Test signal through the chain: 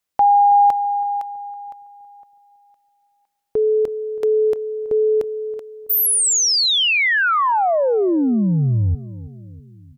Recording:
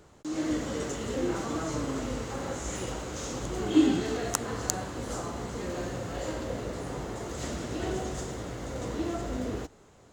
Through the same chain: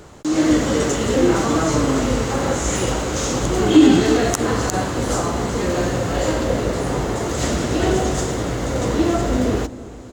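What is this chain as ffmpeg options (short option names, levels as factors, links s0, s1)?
-filter_complex "[0:a]asplit=2[s0][s1];[s1]adelay=326,lowpass=f=880:p=1,volume=0.15,asplit=2[s2][s3];[s3]adelay=326,lowpass=f=880:p=1,volume=0.54,asplit=2[s4][s5];[s5]adelay=326,lowpass=f=880:p=1,volume=0.54,asplit=2[s6][s7];[s7]adelay=326,lowpass=f=880:p=1,volume=0.54,asplit=2[s8][s9];[s9]adelay=326,lowpass=f=880:p=1,volume=0.54[s10];[s2][s4][s6][s8][s10]amix=inputs=5:normalize=0[s11];[s0][s11]amix=inputs=2:normalize=0,alimiter=level_in=5.62:limit=0.891:release=50:level=0:latency=1,volume=0.891"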